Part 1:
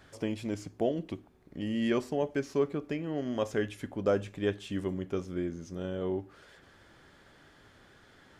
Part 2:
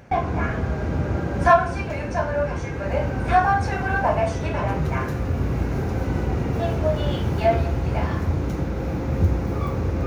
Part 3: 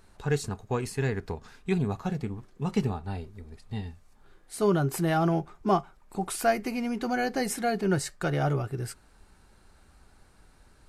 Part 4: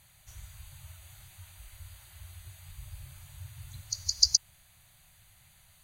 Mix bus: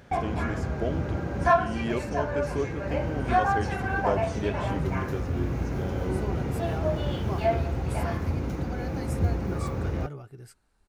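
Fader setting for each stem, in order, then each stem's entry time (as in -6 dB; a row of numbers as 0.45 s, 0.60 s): -1.5 dB, -5.5 dB, -12.5 dB, mute; 0.00 s, 0.00 s, 1.60 s, mute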